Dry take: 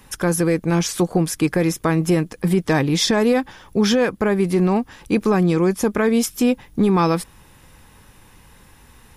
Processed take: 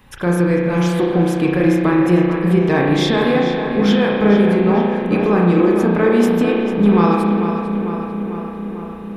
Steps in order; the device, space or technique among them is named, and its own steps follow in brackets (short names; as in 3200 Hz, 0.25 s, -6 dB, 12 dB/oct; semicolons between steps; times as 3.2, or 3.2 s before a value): band shelf 8000 Hz -10 dB; dub delay into a spring reverb (darkening echo 0.447 s, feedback 70%, low-pass 3700 Hz, level -7.5 dB; spring tank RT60 1.6 s, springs 34 ms, chirp 25 ms, DRR -1.5 dB); gain -1 dB